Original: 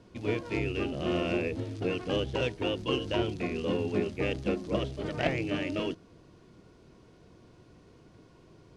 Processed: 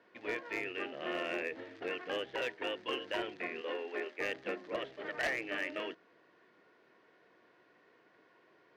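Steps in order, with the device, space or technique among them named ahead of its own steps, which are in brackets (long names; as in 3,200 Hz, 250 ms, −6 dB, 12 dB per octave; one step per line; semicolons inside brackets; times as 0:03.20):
megaphone (band-pass filter 480–3,200 Hz; parametric band 1,800 Hz +11.5 dB 0.49 octaves; hard clipping −24 dBFS, distortion −16 dB)
0:03.61–0:04.19: high-pass filter 300 Hz 24 dB per octave
level −4 dB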